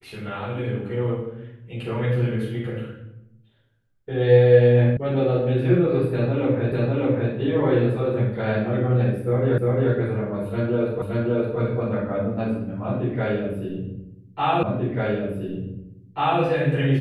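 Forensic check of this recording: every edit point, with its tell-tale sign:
4.97 sound cut off
6.72 repeat of the last 0.6 s
9.58 repeat of the last 0.35 s
11.02 repeat of the last 0.57 s
14.63 repeat of the last 1.79 s

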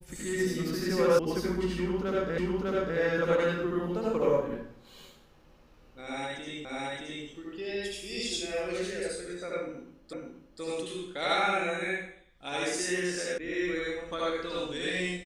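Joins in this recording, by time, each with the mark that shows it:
1.19 sound cut off
2.38 repeat of the last 0.6 s
6.65 repeat of the last 0.62 s
10.13 repeat of the last 0.48 s
13.38 sound cut off

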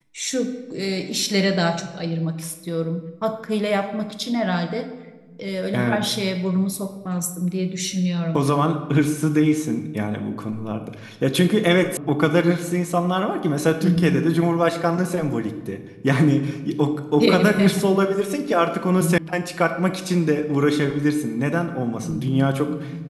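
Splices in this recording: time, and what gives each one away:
11.97 sound cut off
19.18 sound cut off

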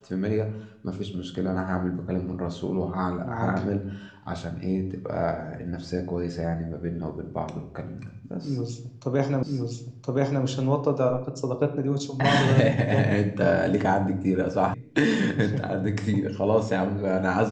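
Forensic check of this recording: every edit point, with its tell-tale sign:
9.43 repeat of the last 1.02 s
14.74 sound cut off

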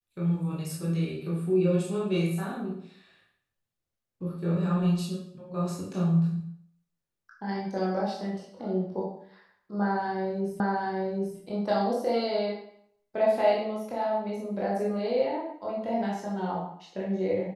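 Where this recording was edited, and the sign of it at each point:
10.6 repeat of the last 0.78 s

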